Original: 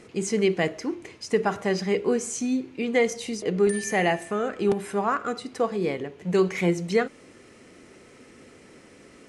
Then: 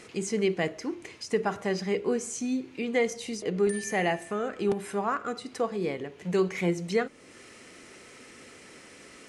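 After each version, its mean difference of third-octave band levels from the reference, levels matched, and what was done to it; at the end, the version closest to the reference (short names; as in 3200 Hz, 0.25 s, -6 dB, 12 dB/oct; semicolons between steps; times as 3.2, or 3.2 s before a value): 1.5 dB: mismatched tape noise reduction encoder only; gain -4 dB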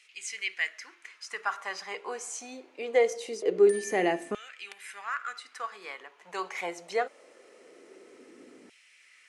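7.0 dB: LFO high-pass saw down 0.23 Hz 260–2700 Hz; gain -6 dB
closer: first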